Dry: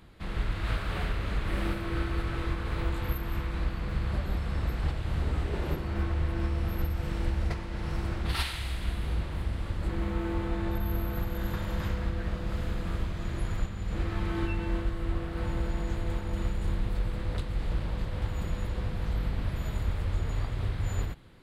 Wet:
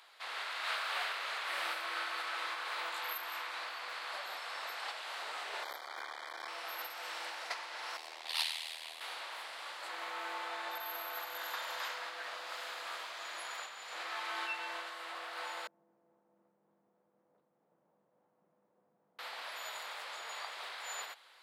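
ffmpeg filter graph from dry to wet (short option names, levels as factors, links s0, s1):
-filter_complex "[0:a]asettb=1/sr,asplit=3[s0][s1][s2];[s0]atrim=end=5.634[s3];[s1]atrim=start=5.63:end=6.48,asetpts=PTS-STARTPTS,afade=t=in:d=0.004:c=qsin,afade=t=out:st=0.846:d=0.004:c=qsin,aeval=exprs='max(val(0),0)':c=same,asuperstop=centerf=2700:order=20:qfactor=4.8[s4];[s2]atrim=start=6.476[s5];[s3][s4]acrossfade=d=0.004:c1=hsin:c2=qsin[s6];[s6][s5]acrossfade=d=0.004:c1=qsin:c2=hsin,asettb=1/sr,asplit=3[s7][s8][s9];[s7]atrim=end=7.974[s10];[s8]atrim=start=7.97:end=9.01,asetpts=PTS-STARTPTS,afade=t=in:d=0.004:c=qsin,afade=t=out:st=1.036:d=0.004:c=qsin,equalizer=f=1400:w=2.4:g=-11,tremolo=f=80:d=0.857[s11];[s9]atrim=start=9.006[s12];[s10][s11]acrossfade=d=0.004:c1=hsin:c2=qsin[s13];[s13][s12]acrossfade=d=0.004:c1=qsin:c2=hsin,asettb=1/sr,asplit=3[s14][s15][s16];[s14]atrim=end=15.674[s17];[s15]atrim=start=15.67:end=19.19,asetpts=PTS-STARTPTS,afade=t=in:d=0.004:c=qsin,afade=t=out:st=3.516:d=0.004:c=qsin,asuperpass=centerf=150:order=4:qfactor=1.5,acontrast=36[s18];[s16]atrim=start=19.186[s19];[s17][s18]acrossfade=d=0.004:c1=hsin:c2=qsin[s20];[s20][s19]acrossfade=d=0.004:c1=qsin:c2=hsin,highpass=f=710:w=0.5412,highpass=f=710:w=1.3066,equalizer=f=4700:t=o:w=1.1:g=5,volume=1.19"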